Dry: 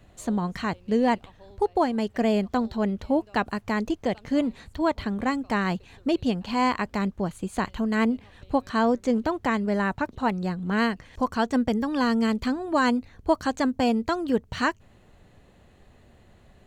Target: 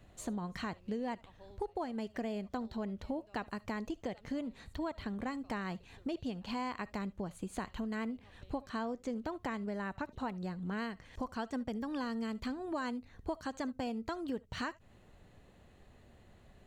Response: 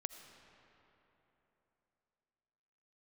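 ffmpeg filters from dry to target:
-filter_complex "[0:a]acompressor=threshold=-31dB:ratio=4[a];[1:a]atrim=start_sample=2205,atrim=end_sample=3528[b];[a][b]afir=irnorm=-1:irlink=0,volume=-2.5dB"

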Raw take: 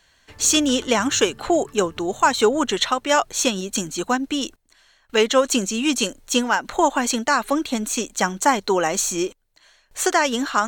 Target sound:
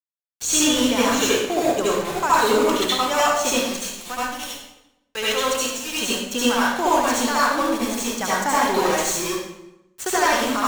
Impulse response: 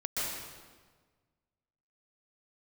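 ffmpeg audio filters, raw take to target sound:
-filter_complex "[0:a]asettb=1/sr,asplit=3[a][b][c];[a]atrim=end=3.704[d];[b]atrim=start=3.7:end=5.96,asetpts=PTS-STARTPTS,afade=t=in:d=0.004:c=qsin,afade=t=out:st=2.256:d=0.004:c=qsin,lowshelf=f=480:g=-11.5[e];[c]atrim=start=5.956[f];[d][e]acrossfade=d=0.004:c1=hsin:c2=qsin[g];[g][f]acrossfade=d=0.004:c1=qsin:c2=hsin,aeval=exprs='val(0)*gte(abs(val(0)),0.075)':c=same[h];[1:a]atrim=start_sample=2205,asetrate=79380,aresample=44100[i];[h][i]afir=irnorm=-1:irlink=0"

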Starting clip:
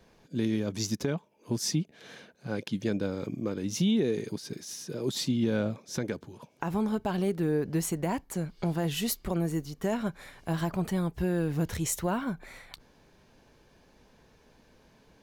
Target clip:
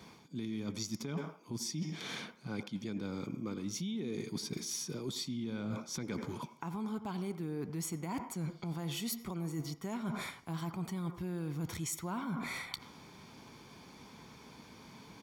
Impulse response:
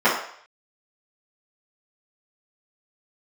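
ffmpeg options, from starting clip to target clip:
-filter_complex "[0:a]highpass=120,equalizer=f=4.6k:t=o:w=1.5:g=2.5,aecho=1:1:0.9:0.54,asplit=2[a][b];[1:a]atrim=start_sample=2205,adelay=81[c];[b][c]afir=irnorm=-1:irlink=0,volume=-34.5dB[d];[a][d]amix=inputs=2:normalize=0,alimiter=limit=-22dB:level=0:latency=1:release=149,areverse,acompressor=threshold=-42dB:ratio=10,areverse,volume=6.5dB"

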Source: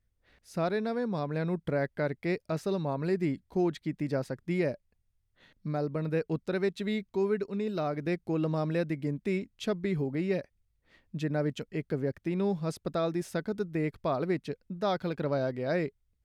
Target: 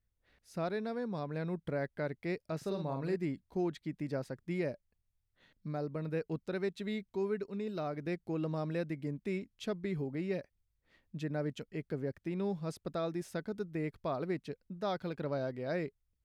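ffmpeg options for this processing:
-filter_complex "[0:a]asettb=1/sr,asplit=3[a][b][c];[a]atrim=end=2.574[d];[b]atrim=start=2.57:end=3.16,asetpts=PTS-STARTPTS,afade=t=in:d=0.004:c=qsin,afade=t=out:st=0.586:d=0.004:c=qsin,asplit=2[e][f];[f]adelay=45,volume=-6dB[g];[e][g]amix=inputs=2:normalize=0,atrim=end_sample=26019[h];[c]atrim=start=3.156[i];[d][h]acrossfade=d=0.004:c1=hsin:c2=qsin[j];[j][i]acrossfade=d=0.004:c1=qsin:c2=hsin,volume=-6dB"

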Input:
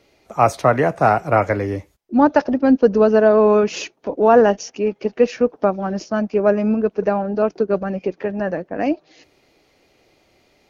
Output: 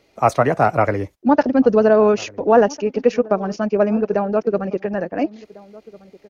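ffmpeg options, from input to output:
-filter_complex "[0:a]atempo=1.7,asplit=2[a][b];[b]adelay=1399,volume=-21dB,highshelf=f=4k:g=-31.5[c];[a][c]amix=inputs=2:normalize=0"

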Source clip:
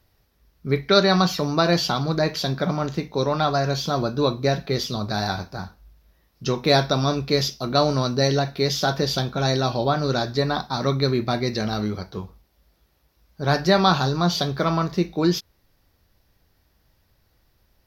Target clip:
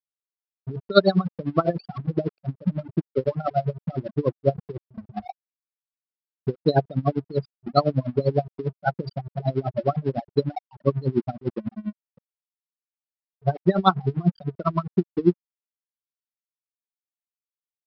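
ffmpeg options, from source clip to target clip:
-af "afftfilt=real='re*gte(hypot(re,im),0.355)':imag='im*gte(hypot(re,im),0.355)':win_size=1024:overlap=0.75,lowpass=3.5k,aresample=11025,aeval=exprs='sgn(val(0))*max(abs(val(0))-0.00708,0)':c=same,aresample=44100,aeval=exprs='val(0)*pow(10,-24*(0.5-0.5*cos(2*PI*10*n/s))/20)':c=same,volume=5.5dB"

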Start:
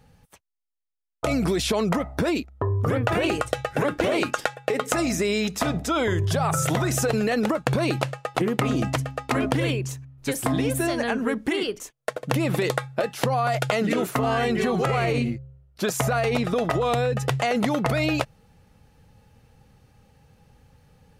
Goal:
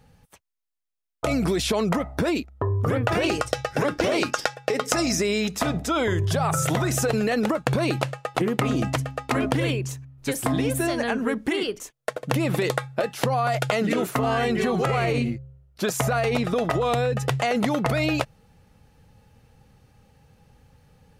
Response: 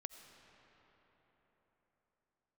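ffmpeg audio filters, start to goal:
-filter_complex "[0:a]asettb=1/sr,asplit=3[a][b][c];[a]atrim=end=3.114[d];[b]atrim=start=3.11:end=5.22,asetpts=PTS-STARTPTS,afade=t=in:d=0.004:c=qsin,afade=t=out:st=2.106:d=0.004:c=qsin,equalizer=f=5.3k:t=o:w=0.47:g=10[e];[c]atrim=start=5.216[f];[d][e]acrossfade=d=0.004:c1=hsin:c2=qsin[g];[g][f]acrossfade=d=0.004:c1=qsin:c2=hsin"

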